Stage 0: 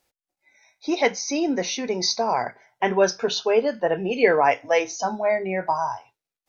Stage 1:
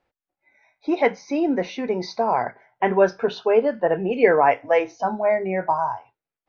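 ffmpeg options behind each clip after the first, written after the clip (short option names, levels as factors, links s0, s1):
-af "lowpass=2000,volume=1.26"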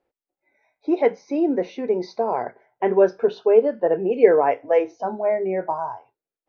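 -af "equalizer=f=410:w=0.94:g=11.5,volume=0.398"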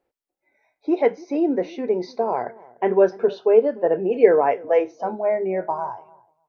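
-filter_complex "[0:a]asplit=2[s0][s1];[s1]adelay=296,lowpass=f=910:p=1,volume=0.0944,asplit=2[s2][s3];[s3]adelay=296,lowpass=f=910:p=1,volume=0.16[s4];[s0][s2][s4]amix=inputs=3:normalize=0"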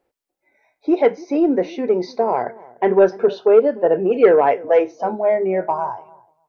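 -af "asoftclip=type=tanh:threshold=0.422,volume=1.68"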